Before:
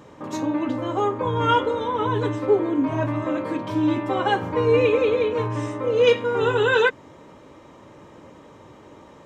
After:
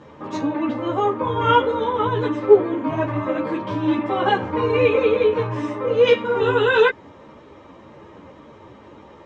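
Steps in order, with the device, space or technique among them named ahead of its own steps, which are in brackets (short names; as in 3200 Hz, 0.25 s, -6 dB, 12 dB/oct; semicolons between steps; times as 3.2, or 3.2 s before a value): string-machine ensemble chorus (ensemble effect; LPF 4400 Hz 12 dB/oct); gain +5.5 dB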